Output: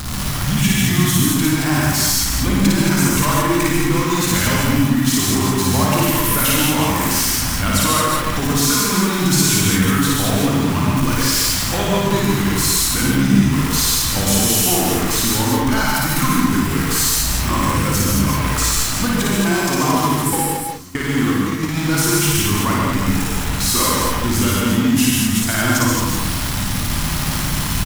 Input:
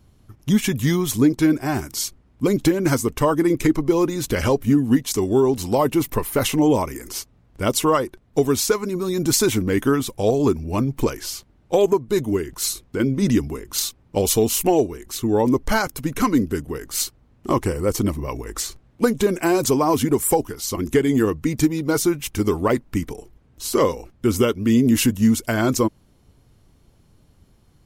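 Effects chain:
converter with a step at zero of −22 dBFS
hum removal 54.28 Hz, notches 11
0:19.37–0:21.71: noise gate −17 dBFS, range −27 dB
drawn EQ curve 260 Hz 0 dB, 420 Hz −12 dB, 1,100 Hz +3 dB
downward compressor 2.5 to 1, threshold −23 dBFS, peak gain reduction 8.5 dB
loudspeakers that aren't time-aligned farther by 19 metres −1 dB, 77 metres −4 dB, 90 metres −10 dB
reverb whose tail is shaped and stops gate 170 ms rising, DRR −1 dB
level +1 dB

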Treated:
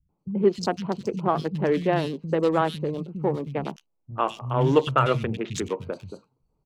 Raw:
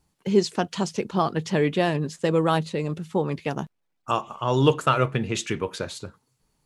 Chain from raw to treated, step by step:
adaptive Wiener filter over 25 samples
three-band delay without the direct sound lows, mids, highs 90/190 ms, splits 190/2,800 Hz
level +1 dB

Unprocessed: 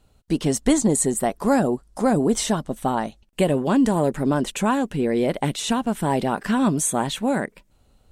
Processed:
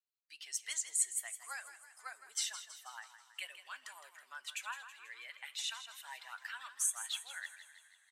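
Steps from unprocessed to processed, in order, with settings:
spectral dynamics exaggerated over time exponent 1.5
high-pass filter 1,500 Hz 24 dB per octave
frequency shifter −15 Hz
echo with shifted repeats 162 ms, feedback 55%, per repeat +33 Hz, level −12 dB
coupled-rooms reverb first 0.21 s, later 4.1 s, from −21 dB, DRR 13.5 dB
level −7.5 dB

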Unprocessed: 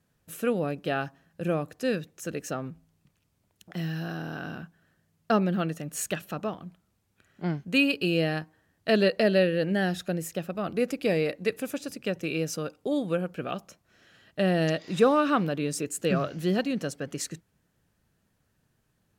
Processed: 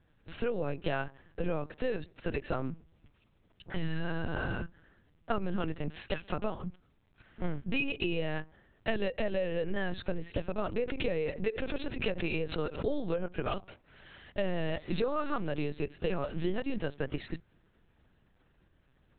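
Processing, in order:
downward compressor 8 to 1, threshold −33 dBFS, peak gain reduction 17.5 dB
linear-prediction vocoder at 8 kHz pitch kept
0:10.83–0:13.26: background raised ahead of every attack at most 110 dB per second
level +5 dB

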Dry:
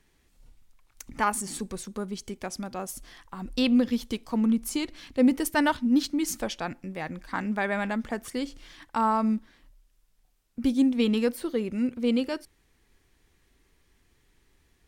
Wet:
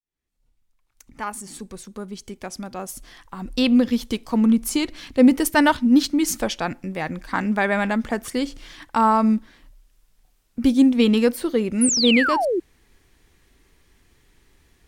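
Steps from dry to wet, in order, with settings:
fade in at the beginning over 4.66 s
sound drawn into the spectrogram fall, 0:11.81–0:12.60, 320–11,000 Hz −28 dBFS
level +7 dB

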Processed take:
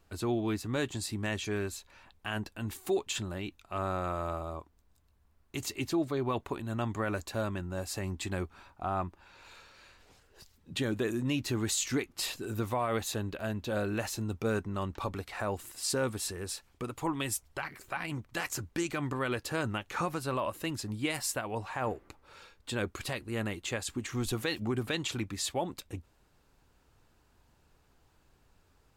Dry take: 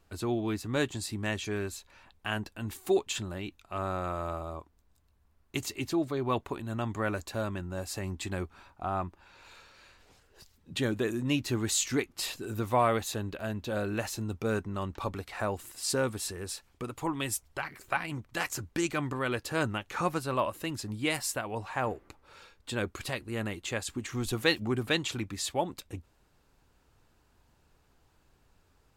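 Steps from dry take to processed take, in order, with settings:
brickwall limiter −21.5 dBFS, peak gain reduction 8.5 dB

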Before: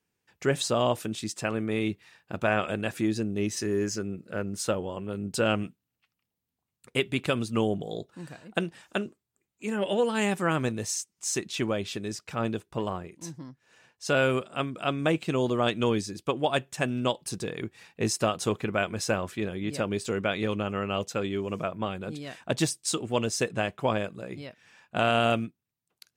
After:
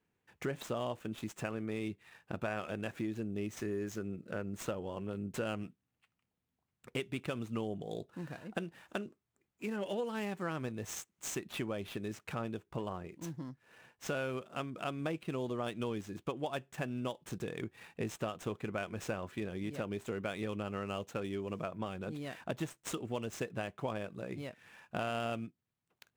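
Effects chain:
running median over 9 samples
downward compressor 3 to 1, threshold −39 dBFS, peak gain reduction 14.5 dB
level +1 dB

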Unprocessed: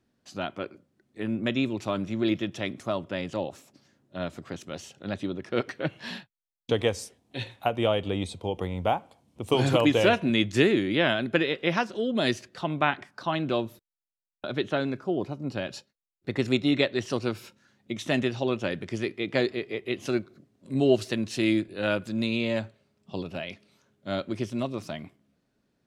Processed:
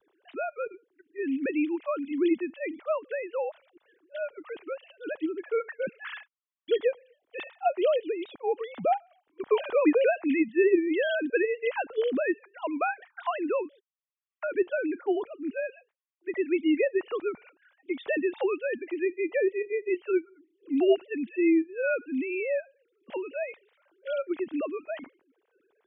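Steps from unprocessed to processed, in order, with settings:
three sine waves on the formant tracks
pitch vibrato 0.3 Hz 8.7 cents
multiband upward and downward compressor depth 40%

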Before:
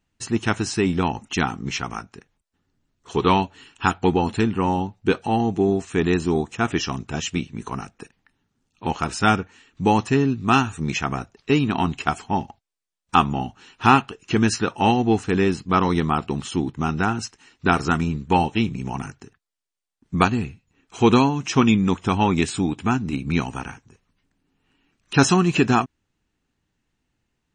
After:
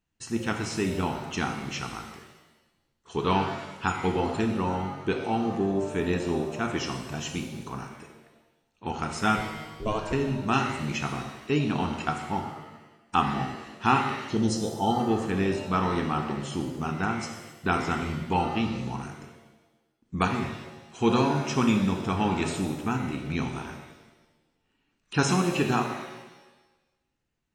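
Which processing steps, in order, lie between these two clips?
0:09.37–0:10.13: ring modulation 220 Hz
0:14.12–0:15.00: gain on a spectral selection 920–3,000 Hz −25 dB
reverb with rising layers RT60 1.1 s, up +7 semitones, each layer −8 dB, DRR 3.5 dB
level −8 dB

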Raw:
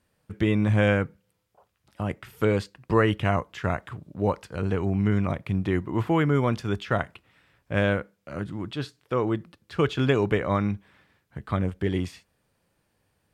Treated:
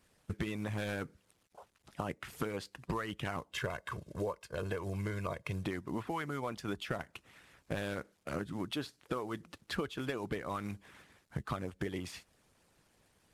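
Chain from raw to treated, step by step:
variable-slope delta modulation 64 kbit/s
0:03.53–0:05.65: comb filter 1.9 ms, depth 77%
harmonic and percussive parts rebalanced harmonic −13 dB
downward compressor 16 to 1, threshold −39 dBFS, peak gain reduction 20.5 dB
level +5.5 dB

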